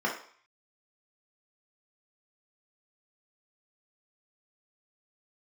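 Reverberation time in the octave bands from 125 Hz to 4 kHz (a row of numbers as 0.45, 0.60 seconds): 0.35, 0.40, 0.45, 0.55, 0.55, 0.55 seconds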